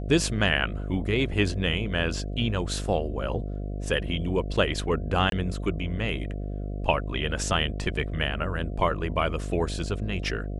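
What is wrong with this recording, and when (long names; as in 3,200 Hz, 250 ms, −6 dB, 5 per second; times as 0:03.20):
mains buzz 50 Hz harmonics 14 −32 dBFS
0:05.30–0:05.32: drop-out 22 ms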